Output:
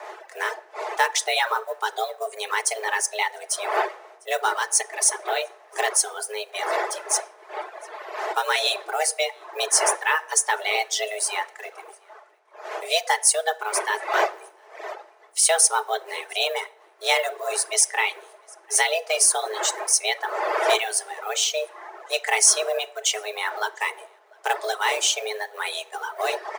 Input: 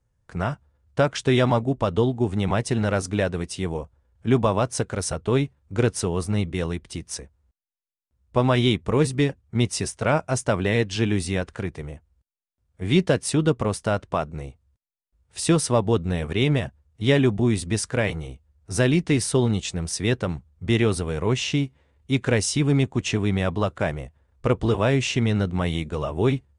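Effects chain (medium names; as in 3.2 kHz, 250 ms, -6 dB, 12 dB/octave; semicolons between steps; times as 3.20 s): companding laws mixed up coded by A; wind noise 430 Hz -28 dBFS; tone controls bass -11 dB, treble +14 dB; delay 701 ms -23 dB; frequency shift +320 Hz; peaking EQ 1.9 kHz +8.5 dB 0.68 oct; comb 4.6 ms, depth 40%; de-hum 63.59 Hz, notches 30; reverberation RT60 0.75 s, pre-delay 5 ms, DRR 6 dB; reverb removal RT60 2 s; trim -2 dB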